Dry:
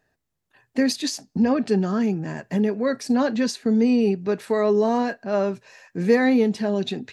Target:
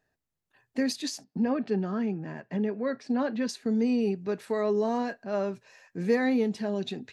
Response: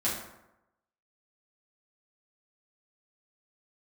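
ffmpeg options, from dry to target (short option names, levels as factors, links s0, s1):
-filter_complex "[0:a]asettb=1/sr,asplit=3[s0][s1][s2];[s0]atrim=end=1.244[s3];[s1]atrim=start=1.24:end=3.49,asetpts=PTS-STARTPTS,afade=t=in:d=0.004:c=qsin,afade=t=out:st=2.246:d=0.004:c=qsin,highpass=120,lowpass=3400[s4];[s2]atrim=start=3.486[s5];[s3][s4]acrossfade=d=0.004:c1=hsin:c2=qsin[s6];[s6][s5]acrossfade=d=0.004:c1=qsin:c2=hsin,volume=0.447"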